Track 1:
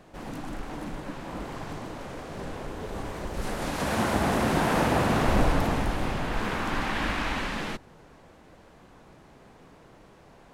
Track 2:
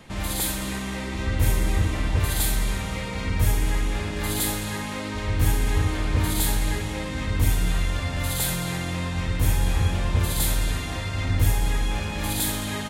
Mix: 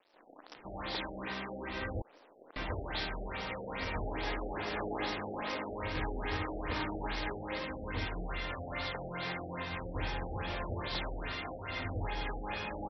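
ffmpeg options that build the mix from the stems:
ffmpeg -i stem1.wav -i stem2.wav -filter_complex "[0:a]equalizer=frequency=270:width_type=o:width=1.5:gain=9,acrusher=bits=5:dc=4:mix=0:aa=0.000001,bass=frequency=250:gain=-13,treble=frequency=4000:gain=12,volume=-17.5dB[link_01];[1:a]flanger=delay=1.8:depth=9.3:regen=-51:speed=1.8:shape=triangular,adelay=550,volume=-0.5dB,asplit=3[link_02][link_03][link_04];[link_02]atrim=end=2.02,asetpts=PTS-STARTPTS,afade=type=out:start_time=2.016:duration=0.004:curve=hsin[link_05];[link_03]atrim=start=2.02:end=2.56,asetpts=PTS-STARTPTS,volume=0[link_06];[link_04]atrim=start=2.56,asetpts=PTS-STARTPTS,afade=type=in:duration=0.004:curve=hsin[link_07];[link_05][link_06][link_07]concat=n=3:v=0:a=1[link_08];[link_01][link_08]amix=inputs=2:normalize=0,bass=frequency=250:gain=-14,treble=frequency=4000:gain=-2,afftfilt=real='re*lt(b*sr/1024,790*pow(5900/790,0.5+0.5*sin(2*PI*2.4*pts/sr)))':imag='im*lt(b*sr/1024,790*pow(5900/790,0.5+0.5*sin(2*PI*2.4*pts/sr)))':win_size=1024:overlap=0.75" out.wav

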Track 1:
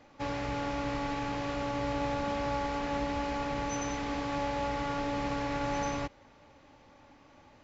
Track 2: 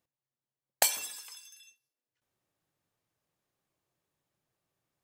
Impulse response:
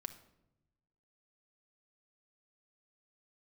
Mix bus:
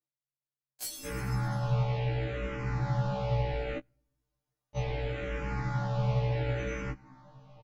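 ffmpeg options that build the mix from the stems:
-filter_complex "[0:a]bass=frequency=250:gain=11,treble=frequency=4000:gain=-9,asplit=2[link_01][link_02];[link_02]afreqshift=-0.7[link_03];[link_01][link_03]amix=inputs=2:normalize=1,adelay=850,volume=1.5dB,asplit=3[link_04][link_05][link_06];[link_04]atrim=end=3.78,asetpts=PTS-STARTPTS,afade=type=out:start_time=3.776:duration=0.004:curve=hsin[link_07];[link_05]atrim=start=3.78:end=4.76,asetpts=PTS-STARTPTS,volume=0[link_08];[link_06]atrim=start=4.76,asetpts=PTS-STARTPTS,afade=type=in:duration=0.004:curve=hsin[link_09];[link_07][link_08][link_09]concat=n=3:v=0:a=1,asplit=2[link_10][link_11];[link_11]volume=-22dB[link_12];[1:a]aecho=1:1:6.8:0.8,acrossover=split=190|3000[link_13][link_14][link_15];[link_14]acompressor=threshold=-49dB:ratio=2[link_16];[link_13][link_16][link_15]amix=inputs=3:normalize=0,asoftclip=type=hard:threshold=-21.5dB,volume=-7.5dB,afade=type=in:start_time=0.62:duration=0.42:silence=0.398107[link_17];[2:a]atrim=start_sample=2205[link_18];[link_12][link_18]afir=irnorm=-1:irlink=0[link_19];[link_10][link_17][link_19]amix=inputs=3:normalize=0,aecho=1:1:6.6:0.83,afftfilt=real='re*1.73*eq(mod(b,3),0)':imag='im*1.73*eq(mod(b,3),0)':win_size=2048:overlap=0.75"

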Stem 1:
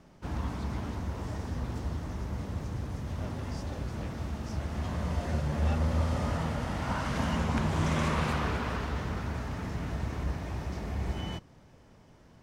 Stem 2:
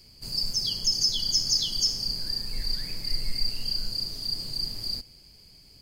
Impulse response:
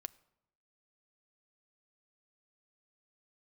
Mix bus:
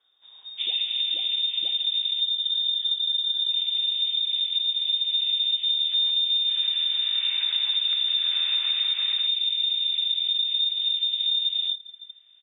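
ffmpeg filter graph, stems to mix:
-filter_complex "[0:a]highpass=frequency=58:width=0.5412,highpass=frequency=58:width=1.3066,afwtdn=0.01,asubboost=boost=6.5:cutoff=140,adelay=350,volume=-0.5dB,asplit=2[link_01][link_02];[link_02]volume=-3.5dB[link_03];[1:a]volume=-15.5dB[link_04];[2:a]atrim=start_sample=2205[link_05];[link_03][link_05]afir=irnorm=-1:irlink=0[link_06];[link_01][link_04][link_06]amix=inputs=3:normalize=0,acontrast=39,lowpass=frequency=3100:width_type=q:width=0.5098,lowpass=frequency=3100:width_type=q:width=0.6013,lowpass=frequency=3100:width_type=q:width=0.9,lowpass=frequency=3100:width_type=q:width=2.563,afreqshift=-3700,acompressor=threshold=-23dB:ratio=6"

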